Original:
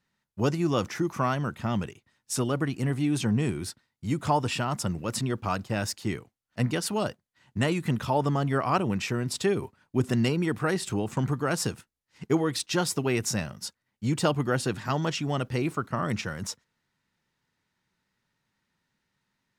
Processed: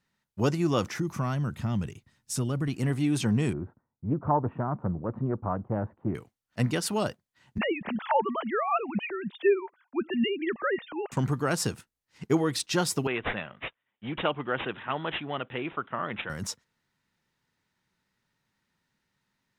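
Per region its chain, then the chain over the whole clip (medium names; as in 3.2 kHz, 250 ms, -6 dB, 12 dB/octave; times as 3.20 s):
0.99–2.68 s: tone controls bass +10 dB, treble +3 dB + compression 1.5:1, threshold -38 dBFS
3.53–6.15 s: inverse Chebyshev low-pass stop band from 4.8 kHz, stop band 70 dB + loudspeaker Doppler distortion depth 0.24 ms
7.58–11.12 s: formants replaced by sine waves + peaking EQ 280 Hz -12.5 dB 0.35 oct
13.07–16.30 s: high-pass 550 Hz 6 dB/octave + careless resampling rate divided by 6×, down none, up filtered
whole clip: none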